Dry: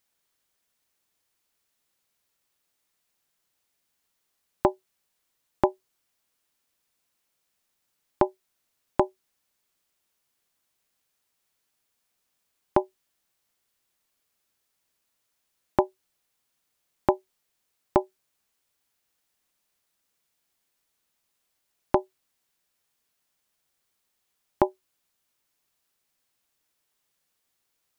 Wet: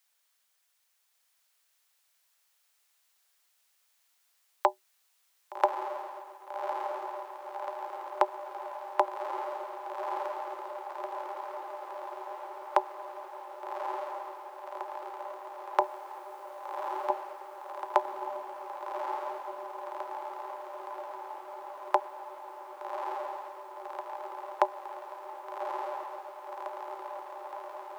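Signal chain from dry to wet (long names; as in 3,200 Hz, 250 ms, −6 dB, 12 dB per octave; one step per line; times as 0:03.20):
Bessel high-pass filter 820 Hz, order 8
0:15.80–0:17.10: compressor whose output falls as the input rises −33 dBFS, ratio −1
on a send: feedback delay with all-pass diffusion 1,176 ms, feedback 75%, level −3.5 dB
on the sum: level +3.5 dB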